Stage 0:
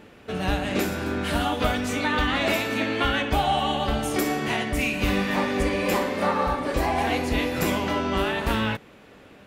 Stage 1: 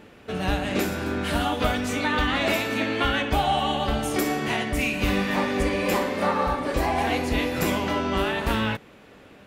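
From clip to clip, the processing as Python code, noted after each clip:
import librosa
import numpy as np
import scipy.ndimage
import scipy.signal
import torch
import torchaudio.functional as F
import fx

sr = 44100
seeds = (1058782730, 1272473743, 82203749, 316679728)

y = x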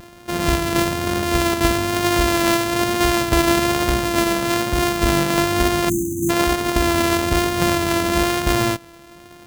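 y = np.r_[np.sort(x[:len(x) // 128 * 128].reshape(-1, 128), axis=1).ravel(), x[len(x) // 128 * 128:]]
y = fx.vibrato(y, sr, rate_hz=1.1, depth_cents=26.0)
y = fx.spec_erase(y, sr, start_s=5.89, length_s=0.41, low_hz=360.0, high_hz=5900.0)
y = y * librosa.db_to_amplitude(6.0)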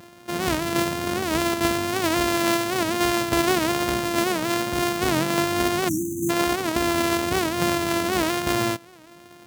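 y = scipy.signal.sosfilt(scipy.signal.butter(2, 110.0, 'highpass', fs=sr, output='sos'), x)
y = fx.record_warp(y, sr, rpm=78.0, depth_cents=160.0)
y = y * librosa.db_to_amplitude(-4.0)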